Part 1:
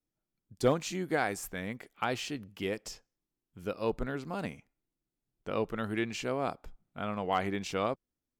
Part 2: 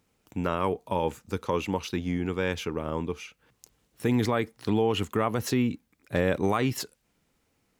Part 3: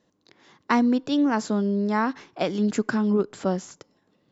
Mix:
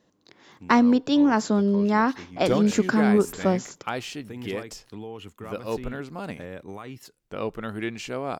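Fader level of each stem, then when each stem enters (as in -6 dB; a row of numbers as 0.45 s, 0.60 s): +2.0 dB, -13.5 dB, +2.5 dB; 1.85 s, 0.25 s, 0.00 s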